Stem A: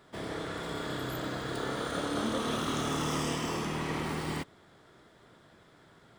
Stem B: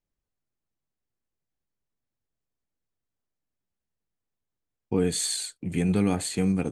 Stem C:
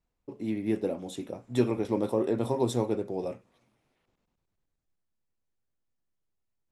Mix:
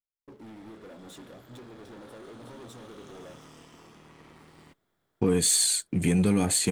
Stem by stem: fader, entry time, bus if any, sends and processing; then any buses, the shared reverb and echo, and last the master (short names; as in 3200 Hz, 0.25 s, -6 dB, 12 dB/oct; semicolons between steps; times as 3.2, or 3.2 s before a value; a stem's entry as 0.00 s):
-16.0 dB, 0.30 s, bus A, no send, tube stage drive 28 dB, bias 0.45
+2.5 dB, 0.30 s, bus A, no send, high shelf 7000 Hz +9 dB
-19.0 dB, 0.00 s, no bus, no send, compressor 10:1, threshold -33 dBFS, peak gain reduction 15 dB; sample leveller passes 5
bus A: 0.0 dB, sample leveller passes 1; compressor 2:1, threshold -23 dBFS, peak gain reduction 5 dB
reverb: off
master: dry